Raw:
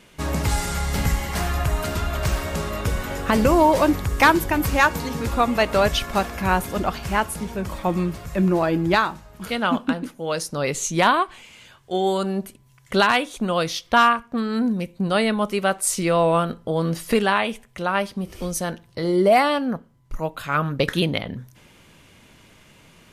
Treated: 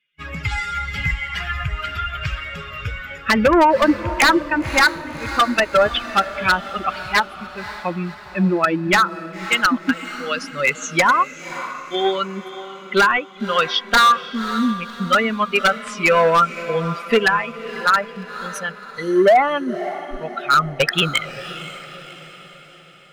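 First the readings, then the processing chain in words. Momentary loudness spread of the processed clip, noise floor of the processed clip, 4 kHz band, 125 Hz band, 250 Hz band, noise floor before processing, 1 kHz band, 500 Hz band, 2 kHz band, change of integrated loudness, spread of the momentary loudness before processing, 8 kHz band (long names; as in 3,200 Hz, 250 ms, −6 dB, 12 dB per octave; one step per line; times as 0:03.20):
15 LU, −41 dBFS, +5.0 dB, −3.0 dB, 0.0 dB, −53 dBFS, +3.5 dB, +1.5 dB, +6.0 dB, +3.0 dB, 11 LU, −2.5 dB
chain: spectral dynamics exaggerated over time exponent 2
mid-hump overdrive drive 14 dB, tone 1,400 Hz, clips at −7.5 dBFS
flat-topped bell 2,100 Hz +15.5 dB
treble cut that deepens with the level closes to 870 Hz, closed at −11.5 dBFS
wave folding −12.5 dBFS
on a send: feedback delay with all-pass diffusion 547 ms, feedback 50%, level −13.5 dB
on the sum: level +5 dB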